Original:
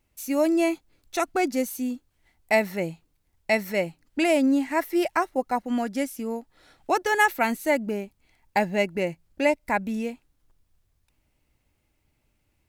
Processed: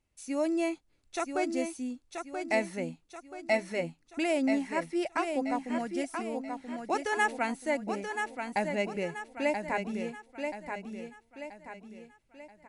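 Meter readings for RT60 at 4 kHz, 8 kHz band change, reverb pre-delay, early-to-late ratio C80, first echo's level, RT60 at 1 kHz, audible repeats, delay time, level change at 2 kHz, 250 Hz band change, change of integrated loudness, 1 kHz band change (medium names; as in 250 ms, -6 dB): no reverb, -6.5 dB, no reverb, no reverb, -6.0 dB, no reverb, 4, 981 ms, -6.5 dB, -6.5 dB, -7.0 dB, -6.5 dB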